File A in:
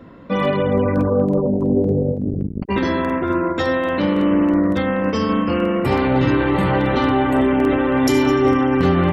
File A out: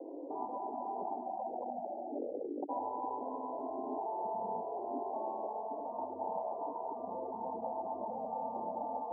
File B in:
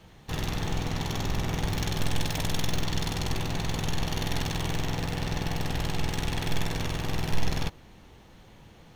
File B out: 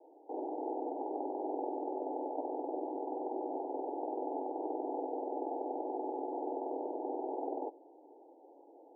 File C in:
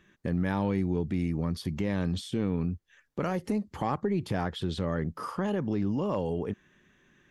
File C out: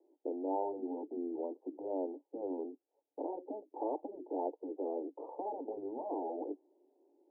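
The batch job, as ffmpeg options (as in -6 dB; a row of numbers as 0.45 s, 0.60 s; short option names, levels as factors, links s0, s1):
-af "asuperpass=centerf=500:order=20:qfactor=0.82,afftfilt=real='re*lt(hypot(re,im),0.141)':imag='im*lt(hypot(re,im),0.141)':win_size=1024:overlap=0.75,volume=1.19"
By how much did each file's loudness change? -21.5 LU, -7.5 LU, -9.5 LU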